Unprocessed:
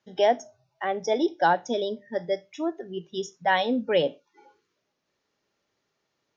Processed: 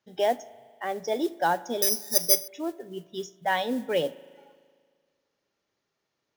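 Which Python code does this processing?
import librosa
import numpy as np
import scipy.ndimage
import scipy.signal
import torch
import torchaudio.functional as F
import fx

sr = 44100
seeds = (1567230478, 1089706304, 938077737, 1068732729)

y = fx.rev_spring(x, sr, rt60_s=1.9, pass_ms=(38,), chirp_ms=80, drr_db=19.0)
y = fx.resample_bad(y, sr, factor=8, down='none', up='zero_stuff', at=(1.82, 2.48))
y = fx.mod_noise(y, sr, seeds[0], snr_db=24)
y = y * 10.0 ** (-3.5 / 20.0)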